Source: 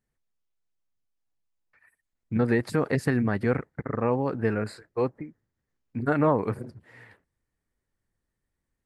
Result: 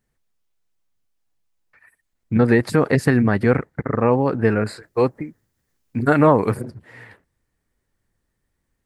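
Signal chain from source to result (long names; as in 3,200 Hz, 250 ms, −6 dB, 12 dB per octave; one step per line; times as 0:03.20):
0:04.83–0:06.62: high-shelf EQ 4,200 Hz +9.5 dB
level +8 dB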